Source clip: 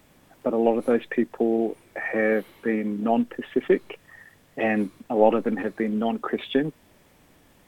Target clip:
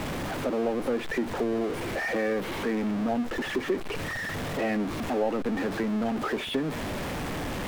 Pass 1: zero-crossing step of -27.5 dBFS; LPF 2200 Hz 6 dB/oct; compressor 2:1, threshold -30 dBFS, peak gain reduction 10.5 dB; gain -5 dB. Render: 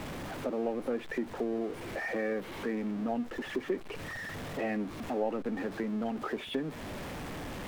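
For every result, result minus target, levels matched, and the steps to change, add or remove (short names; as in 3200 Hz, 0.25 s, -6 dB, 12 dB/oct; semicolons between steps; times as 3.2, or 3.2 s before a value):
zero-crossing step: distortion -6 dB; compressor: peak gain reduction +3.5 dB
change: zero-crossing step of -19.5 dBFS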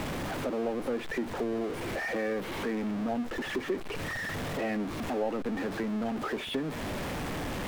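compressor: peak gain reduction +4 dB
change: compressor 2:1, threshold -22 dBFS, peak gain reduction 7 dB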